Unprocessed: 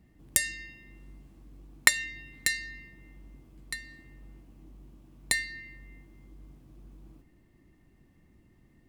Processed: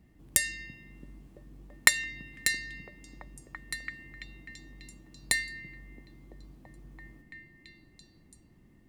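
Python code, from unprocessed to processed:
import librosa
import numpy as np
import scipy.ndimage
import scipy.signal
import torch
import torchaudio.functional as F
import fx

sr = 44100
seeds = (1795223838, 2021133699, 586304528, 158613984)

y = fx.echo_stepped(x, sr, ms=335, hz=160.0, octaves=0.7, feedback_pct=70, wet_db=-2.5)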